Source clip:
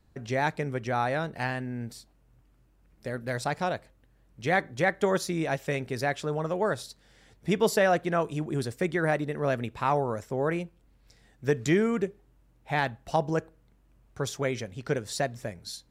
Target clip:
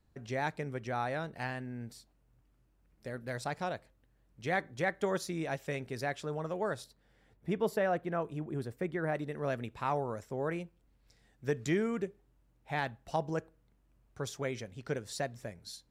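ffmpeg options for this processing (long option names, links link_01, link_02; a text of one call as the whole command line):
ffmpeg -i in.wav -filter_complex "[0:a]asettb=1/sr,asplit=3[link_01][link_02][link_03];[link_01]atrim=end=6.844[link_04];[link_02]atrim=start=6.84:end=9.15,asetpts=PTS-STARTPTS,afade=type=in:duration=0.004:curve=qsin,afade=type=out:start_time=2.306:duration=0.004:curve=qsin,equalizer=frequency=6300:width_type=o:width=2.2:gain=-11.5[link_05];[link_03]atrim=start=9.146[link_06];[link_04][link_05]acrossfade=duration=0.004:curve1=hsin:curve2=qsin[link_07];[link_07][link_06]acrossfade=duration=0.004:curve1=qsin:curve2=hsin,volume=-7dB" out.wav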